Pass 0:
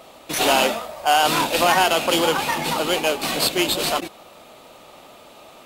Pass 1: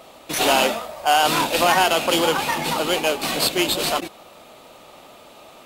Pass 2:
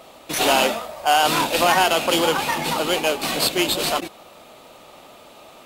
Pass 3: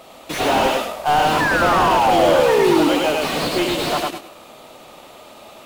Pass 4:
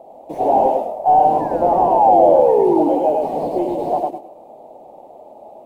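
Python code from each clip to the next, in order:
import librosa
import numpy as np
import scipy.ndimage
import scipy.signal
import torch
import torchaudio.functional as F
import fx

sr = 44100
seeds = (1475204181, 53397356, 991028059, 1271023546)

y1 = x
y2 = fx.quant_dither(y1, sr, seeds[0], bits=12, dither='none')
y3 = fx.spec_paint(y2, sr, seeds[1], shape='fall', start_s=1.4, length_s=1.49, low_hz=280.0, high_hz=1800.0, level_db=-18.0)
y3 = fx.echo_feedback(y3, sr, ms=103, feedback_pct=24, wet_db=-3.0)
y3 = fx.slew_limit(y3, sr, full_power_hz=190.0)
y3 = y3 * 10.0 ** (1.5 / 20.0)
y4 = fx.curve_eq(y3, sr, hz=(110.0, 830.0, 1300.0, 2100.0, 3600.0, 11000.0), db=(0, 14, -20, -16, -20, -12))
y4 = y4 * 10.0 ** (-8.0 / 20.0)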